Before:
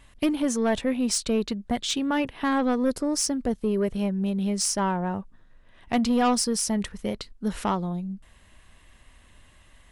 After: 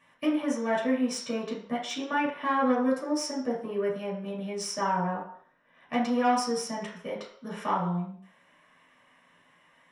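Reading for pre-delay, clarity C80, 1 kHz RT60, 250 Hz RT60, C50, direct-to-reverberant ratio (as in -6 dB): 3 ms, 9.0 dB, 0.60 s, 0.40 s, 4.5 dB, -6.0 dB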